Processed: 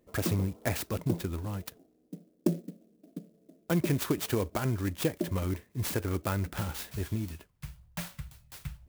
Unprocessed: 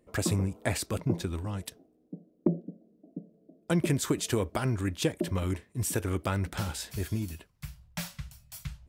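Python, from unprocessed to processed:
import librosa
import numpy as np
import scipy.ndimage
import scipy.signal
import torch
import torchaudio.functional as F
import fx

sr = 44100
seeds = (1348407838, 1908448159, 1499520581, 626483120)

y = fx.clock_jitter(x, sr, seeds[0], jitter_ms=0.047)
y = y * 10.0 ** (-1.0 / 20.0)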